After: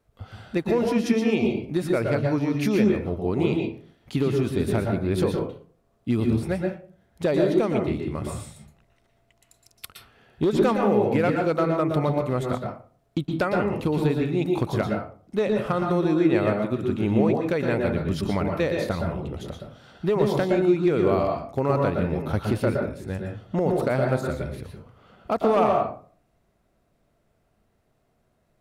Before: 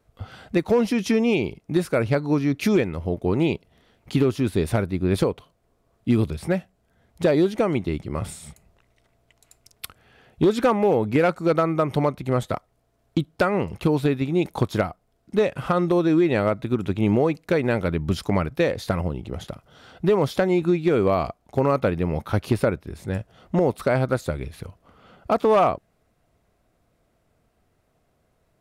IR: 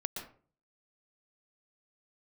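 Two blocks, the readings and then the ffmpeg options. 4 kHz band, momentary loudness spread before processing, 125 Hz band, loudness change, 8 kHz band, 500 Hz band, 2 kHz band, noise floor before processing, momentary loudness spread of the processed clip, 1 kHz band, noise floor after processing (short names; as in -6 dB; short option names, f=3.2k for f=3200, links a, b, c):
-2.5 dB, 12 LU, -1.0 dB, -1.5 dB, n/a, -1.0 dB, -2.0 dB, -68 dBFS, 12 LU, -1.5 dB, -68 dBFS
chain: -filter_complex "[1:a]atrim=start_sample=2205[a];[0:a][a]afir=irnorm=-1:irlink=0,volume=-3dB"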